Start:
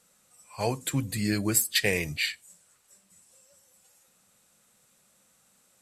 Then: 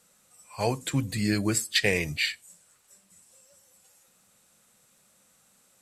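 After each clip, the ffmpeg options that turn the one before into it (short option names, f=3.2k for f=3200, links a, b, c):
-filter_complex "[0:a]acrossover=split=8100[a][b];[b]acompressor=threshold=-47dB:ratio=4:attack=1:release=60[c];[a][c]amix=inputs=2:normalize=0,volume=1.5dB"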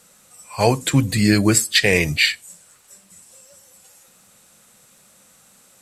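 -af "alimiter=level_in=11.5dB:limit=-1dB:release=50:level=0:latency=1,volume=-1dB"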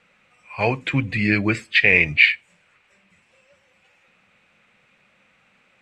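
-af "lowpass=f=2.4k:t=q:w=3.9,volume=-5.5dB"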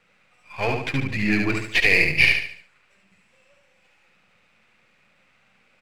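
-filter_complex "[0:a]aeval=exprs='if(lt(val(0),0),0.447*val(0),val(0))':c=same,asplit=2[a][b];[b]aecho=0:1:72|144|216|288|360:0.631|0.252|0.101|0.0404|0.0162[c];[a][c]amix=inputs=2:normalize=0,volume=-1dB"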